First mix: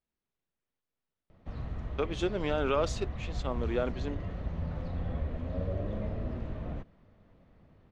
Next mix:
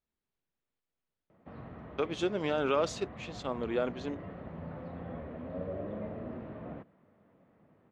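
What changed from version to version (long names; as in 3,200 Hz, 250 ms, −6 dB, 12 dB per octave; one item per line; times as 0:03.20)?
background: add band-pass filter 180–2,100 Hz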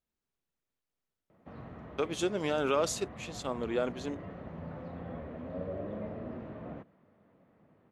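master: remove low-pass filter 4,400 Hz 12 dB per octave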